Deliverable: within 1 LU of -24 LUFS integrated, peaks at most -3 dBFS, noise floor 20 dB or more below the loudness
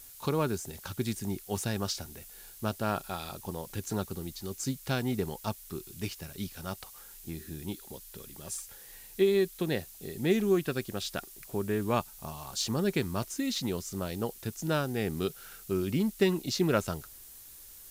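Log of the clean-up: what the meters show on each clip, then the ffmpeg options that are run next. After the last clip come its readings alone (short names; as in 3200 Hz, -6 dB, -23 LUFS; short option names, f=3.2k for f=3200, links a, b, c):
noise floor -50 dBFS; noise floor target -53 dBFS; loudness -32.5 LUFS; peak -14.0 dBFS; loudness target -24.0 LUFS
-> -af "afftdn=nr=6:nf=-50"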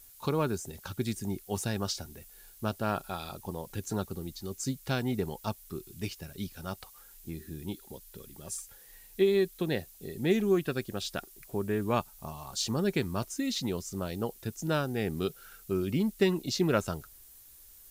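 noise floor -54 dBFS; loudness -32.5 LUFS; peak -14.5 dBFS; loudness target -24.0 LUFS
-> -af "volume=8.5dB"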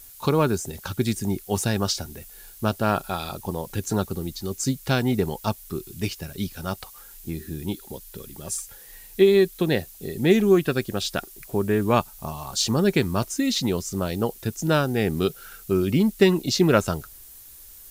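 loudness -24.0 LUFS; peak -6.0 dBFS; noise floor -46 dBFS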